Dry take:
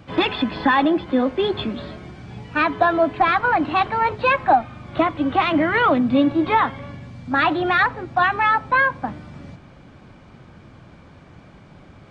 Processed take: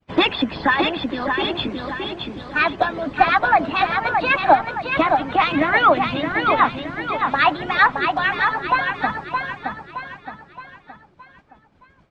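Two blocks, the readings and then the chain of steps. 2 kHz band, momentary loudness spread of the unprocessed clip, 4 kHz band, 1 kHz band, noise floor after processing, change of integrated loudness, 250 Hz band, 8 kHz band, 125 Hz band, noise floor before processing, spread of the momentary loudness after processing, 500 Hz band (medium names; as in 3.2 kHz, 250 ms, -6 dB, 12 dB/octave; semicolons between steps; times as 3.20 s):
+2.0 dB, 14 LU, +4.5 dB, +1.0 dB, -55 dBFS, 0.0 dB, -4.0 dB, no reading, -1.5 dB, -46 dBFS, 12 LU, -1.0 dB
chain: expander -34 dBFS; harmonic-percussive split harmonic -17 dB; feedback delay 619 ms, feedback 44%, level -5 dB; trim +5 dB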